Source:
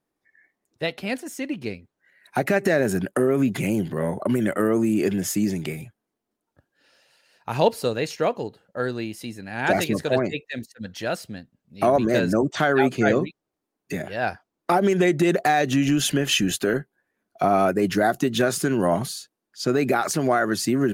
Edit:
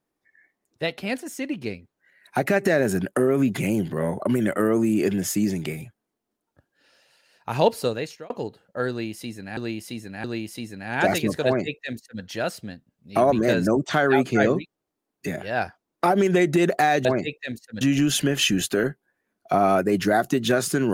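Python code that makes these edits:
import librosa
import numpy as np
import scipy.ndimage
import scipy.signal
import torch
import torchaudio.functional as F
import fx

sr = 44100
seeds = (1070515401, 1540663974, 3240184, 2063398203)

y = fx.edit(x, sr, fx.fade_out_span(start_s=7.86, length_s=0.44),
    fx.repeat(start_s=8.9, length_s=0.67, count=3),
    fx.duplicate(start_s=10.12, length_s=0.76, to_s=15.71), tone=tone)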